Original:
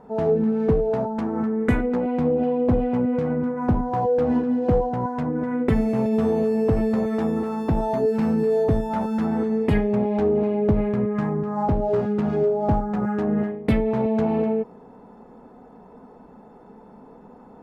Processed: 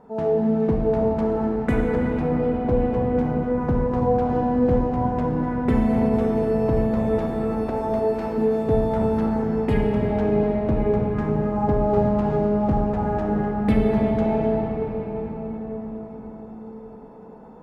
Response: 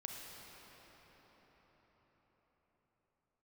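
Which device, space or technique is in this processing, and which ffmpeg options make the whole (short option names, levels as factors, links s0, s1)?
cathedral: -filter_complex "[0:a]asettb=1/sr,asplit=3[s0][s1][s2];[s0]atrim=end=7.304[s3];[s1]atrim=start=7.3:end=8.38,asetpts=PTS-STARTPTS,afade=t=in:d=0.004:c=qsin,afade=t=out:st=1.076:d=0.004:c=qsin,highpass=f=340:w=0.5412,highpass=f=340:w=1.3066[s4];[s2]atrim=start=8.376[s5];[s3][s4]acrossfade=d=0.004:c1=hsin:c2=qsin[s6];[s6][s5]acrossfade=d=0.004:c1=qsin:c2=hsin[s7];[1:a]atrim=start_sample=2205[s8];[s7][s8]afir=irnorm=-1:irlink=0,volume=1.33"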